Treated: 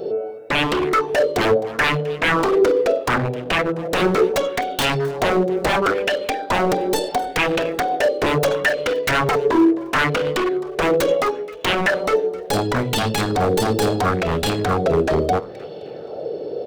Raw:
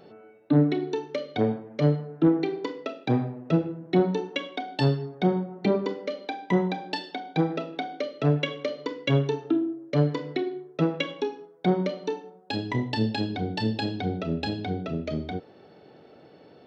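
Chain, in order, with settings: tracing distortion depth 0.25 ms; graphic EQ 250/500/1000/2000 Hz -7/+11/-6/-10 dB; in parallel at -1.5 dB: compression 6:1, threshold -37 dBFS, peak gain reduction 21 dB; on the sum: wavefolder -24.5 dBFS; on a send: frequency-shifting echo 261 ms, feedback 35%, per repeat +38 Hz, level -20 dB; on the sum: sweeping bell 0.73 Hz 360–3100 Hz +9 dB; trim +9 dB

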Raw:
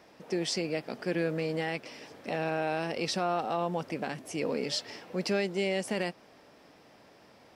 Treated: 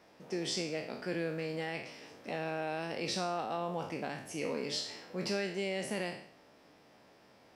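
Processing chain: spectral sustain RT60 0.59 s; trim -6 dB

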